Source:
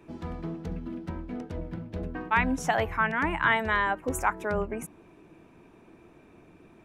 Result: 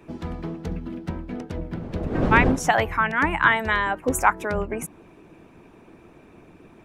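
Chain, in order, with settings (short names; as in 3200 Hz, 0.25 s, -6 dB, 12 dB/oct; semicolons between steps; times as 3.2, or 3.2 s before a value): 1.7–2.71 wind noise 340 Hz -38 dBFS; harmonic-percussive split harmonic -6 dB; gain +8 dB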